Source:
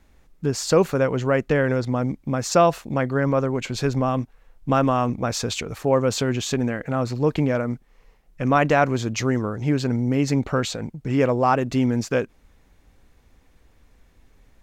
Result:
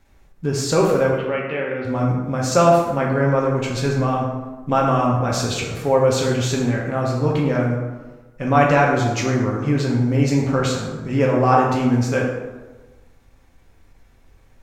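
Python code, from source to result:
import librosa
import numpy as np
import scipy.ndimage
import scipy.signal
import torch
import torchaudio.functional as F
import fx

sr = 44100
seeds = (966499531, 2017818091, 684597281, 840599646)

y = fx.cabinet(x, sr, low_hz=300.0, low_slope=12, high_hz=3100.0, hz=(300.0, 470.0, 670.0, 1000.0, 1600.0, 2700.0), db=(-7, -7, -8, -8, -8, 5), at=(1.12, 1.85))
y = fx.rev_plate(y, sr, seeds[0], rt60_s=1.2, hf_ratio=0.55, predelay_ms=0, drr_db=-3.0)
y = fx.end_taper(y, sr, db_per_s=320.0)
y = y * librosa.db_to_amplitude(-1.5)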